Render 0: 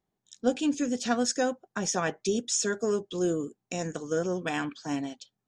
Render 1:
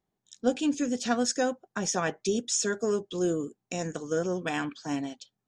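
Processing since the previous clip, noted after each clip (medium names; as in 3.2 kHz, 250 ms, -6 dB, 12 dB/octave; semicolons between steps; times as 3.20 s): no audible change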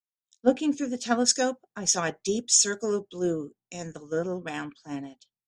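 three bands expanded up and down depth 100%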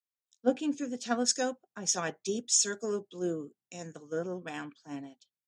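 high-pass 110 Hz; trim -5.5 dB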